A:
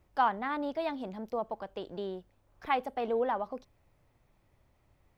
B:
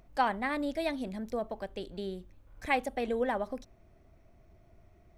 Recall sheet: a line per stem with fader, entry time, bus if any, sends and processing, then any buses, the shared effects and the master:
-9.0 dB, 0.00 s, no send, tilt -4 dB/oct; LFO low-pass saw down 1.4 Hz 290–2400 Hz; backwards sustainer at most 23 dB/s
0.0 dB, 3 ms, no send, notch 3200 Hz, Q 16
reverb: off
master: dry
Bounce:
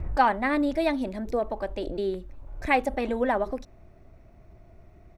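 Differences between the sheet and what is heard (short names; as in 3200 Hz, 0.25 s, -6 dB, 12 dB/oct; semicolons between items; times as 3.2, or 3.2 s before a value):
stem B 0.0 dB -> +7.0 dB; master: extra high shelf 4000 Hz -6.5 dB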